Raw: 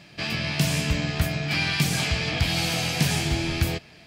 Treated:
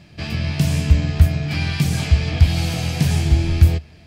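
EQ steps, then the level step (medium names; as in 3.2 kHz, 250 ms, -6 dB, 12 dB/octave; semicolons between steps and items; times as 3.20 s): tilt EQ -2.5 dB/octave; peaking EQ 78 Hz +10 dB 0.49 oct; treble shelf 4.6 kHz +9.5 dB; -2.0 dB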